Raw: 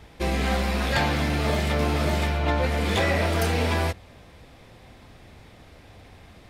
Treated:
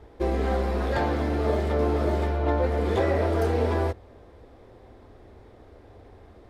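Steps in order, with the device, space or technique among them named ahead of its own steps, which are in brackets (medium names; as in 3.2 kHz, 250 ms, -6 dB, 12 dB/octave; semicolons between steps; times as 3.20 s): fifteen-band graphic EQ 160 Hz -11 dB, 400 Hz +7 dB, 2.5 kHz -6 dB; through cloth (treble shelf 2.3 kHz -14.5 dB)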